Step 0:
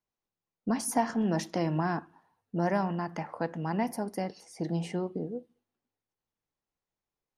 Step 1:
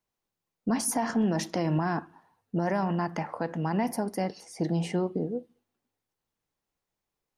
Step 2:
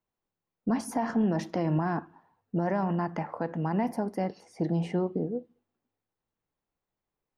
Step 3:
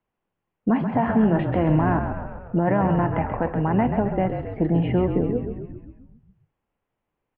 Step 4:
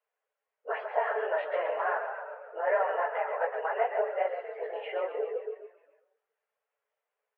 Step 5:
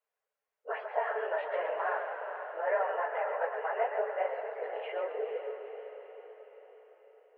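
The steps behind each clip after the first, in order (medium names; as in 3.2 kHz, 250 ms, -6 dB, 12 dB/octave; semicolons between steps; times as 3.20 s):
peak limiter -22.5 dBFS, peak gain reduction 8 dB; trim +4.5 dB
peaking EQ 11 kHz -13.5 dB 2.6 oct
steep low-pass 3.1 kHz 48 dB/octave; on a send: frequency-shifting echo 133 ms, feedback 61%, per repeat -43 Hz, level -7 dB; on the sum: trim +7 dB
phase randomisation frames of 50 ms; rippled Chebyshev high-pass 420 Hz, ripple 6 dB
echo that smears into a reverb 482 ms, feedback 52%, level -9 dB; trim -3 dB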